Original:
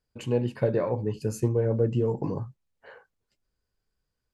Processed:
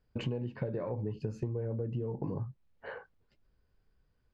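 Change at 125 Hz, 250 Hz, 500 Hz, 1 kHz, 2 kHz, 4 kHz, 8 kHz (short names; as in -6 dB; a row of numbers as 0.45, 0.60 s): -7.0 dB, -8.5 dB, -11.5 dB, -9.0 dB, -4.0 dB, n/a, under -20 dB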